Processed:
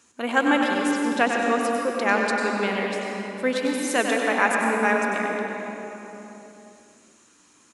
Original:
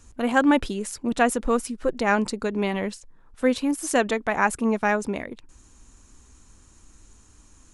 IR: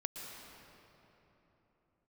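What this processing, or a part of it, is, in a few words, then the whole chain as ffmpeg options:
PA in a hall: -filter_complex "[0:a]asettb=1/sr,asplit=3[s0][s1][s2];[s0]atrim=end=0.914[s3];[s1]atrim=start=0.91:end=1.61,asetpts=PTS-STARTPTS,afade=t=in:d=0.004:c=qsin,afade=t=out:st=0.696:d=0.004:c=qsin,lowpass=f=6900:w=0.5412,lowpass=f=6900:w=1.3066[s4];[s2]atrim=start=1.606[s5];[s3][s4]acrossfade=d=0.004:c1=hsin:c2=qsin[s6];[s6][s5]acrossfade=d=0.004:c1=qsin:c2=hsin,highpass=180,highpass=f=180:p=1,equalizer=f=2400:t=o:w=2:g=5,aecho=1:1:97:0.398[s7];[1:a]atrim=start_sample=2205[s8];[s7][s8]afir=irnorm=-1:irlink=0"

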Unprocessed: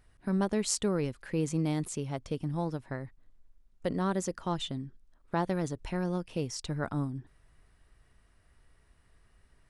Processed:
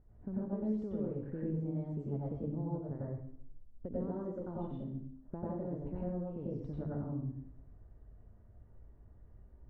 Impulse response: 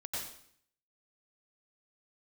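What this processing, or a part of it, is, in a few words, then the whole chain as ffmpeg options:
television next door: -filter_complex "[0:a]acompressor=threshold=0.00891:ratio=4,lowpass=520[s0];[1:a]atrim=start_sample=2205[s1];[s0][s1]afir=irnorm=-1:irlink=0,volume=2"

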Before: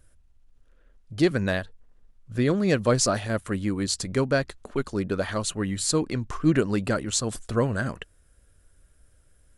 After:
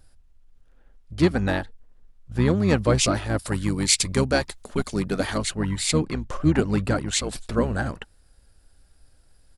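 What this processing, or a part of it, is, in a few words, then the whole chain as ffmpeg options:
octave pedal: -filter_complex "[0:a]asplit=2[s0][s1];[s1]asetrate=22050,aresample=44100,atempo=2,volume=0.708[s2];[s0][s2]amix=inputs=2:normalize=0,asettb=1/sr,asplit=3[s3][s4][s5];[s3]atrim=end=3.394[s6];[s4]atrim=start=3.39:end=5.38,asetpts=PTS-STARTPTS,afade=t=in:d=0.004:c=qsin,afade=t=out:st=1.986:d=0.004:c=qsin,highshelf=f=3900:g=12[s7];[s5]atrim=start=5.376[s8];[s6][s7]acrossfade=d=0.004:c1=hsin:c2=qsin[s9];[s9][s8]acrossfade=d=0.004:c1=qsin:c2=hsin"

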